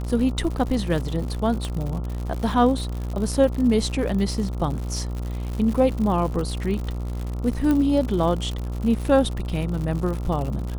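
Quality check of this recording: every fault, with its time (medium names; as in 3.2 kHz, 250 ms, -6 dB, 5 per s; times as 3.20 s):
buzz 60 Hz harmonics 23 -28 dBFS
crackle 120 per s -29 dBFS
1.65 s: pop
7.71 s: pop -12 dBFS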